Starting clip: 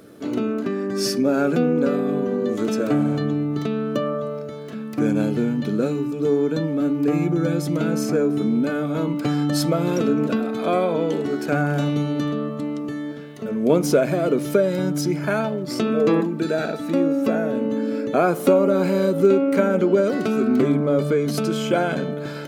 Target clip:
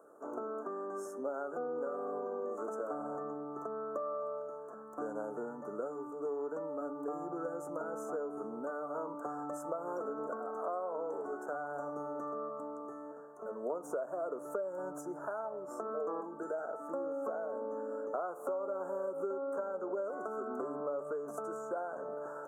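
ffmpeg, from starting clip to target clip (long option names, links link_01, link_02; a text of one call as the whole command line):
ffmpeg -i in.wav -filter_complex "[0:a]highpass=frequency=290:poles=1,acrossover=split=490 5600:gain=0.0708 1 0.112[link_01][link_02][link_03];[link_01][link_02][link_03]amix=inputs=3:normalize=0,acompressor=threshold=-31dB:ratio=6,asuperstop=centerf=3200:order=12:qfactor=0.55,volume=-3dB" out.wav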